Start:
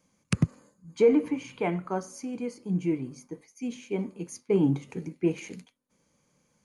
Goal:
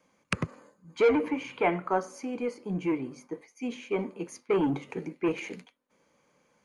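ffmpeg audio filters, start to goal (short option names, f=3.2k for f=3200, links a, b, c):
-filter_complex "[0:a]bass=f=250:g=-13,treble=f=4k:g=-12,acrossover=split=670|1100[a][b][c];[a]asoftclip=type=tanh:threshold=-29.5dB[d];[d][b][c]amix=inputs=3:normalize=0,volume=6.5dB"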